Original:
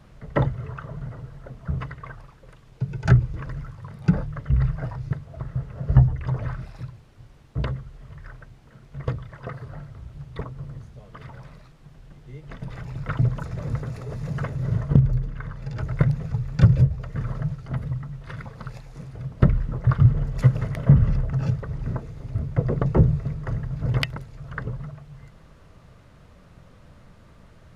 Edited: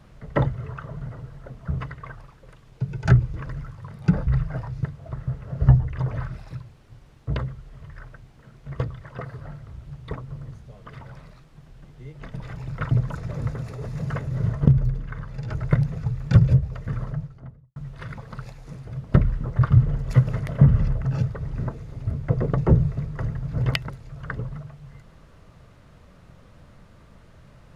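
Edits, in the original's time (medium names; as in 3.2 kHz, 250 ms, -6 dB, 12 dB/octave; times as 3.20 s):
4.27–4.55 s: delete
17.15–18.04 s: studio fade out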